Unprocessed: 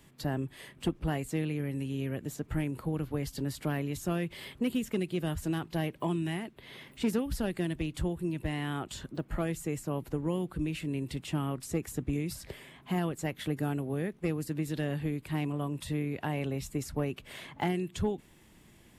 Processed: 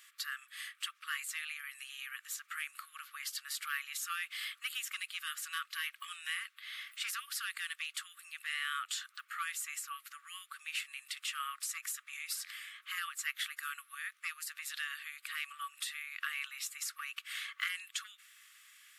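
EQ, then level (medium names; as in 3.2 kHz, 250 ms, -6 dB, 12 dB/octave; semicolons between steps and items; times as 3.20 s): brick-wall FIR high-pass 1.1 kHz; +5.0 dB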